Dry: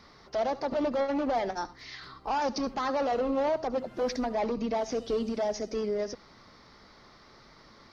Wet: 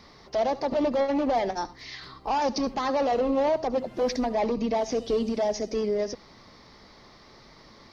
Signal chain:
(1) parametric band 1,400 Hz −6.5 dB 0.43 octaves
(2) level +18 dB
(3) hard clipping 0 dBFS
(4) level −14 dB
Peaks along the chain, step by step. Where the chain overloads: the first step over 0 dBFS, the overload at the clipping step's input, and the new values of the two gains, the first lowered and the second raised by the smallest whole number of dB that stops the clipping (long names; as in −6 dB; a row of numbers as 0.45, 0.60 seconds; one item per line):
−20.0, −2.0, −2.0, −16.0 dBFS
no step passes full scale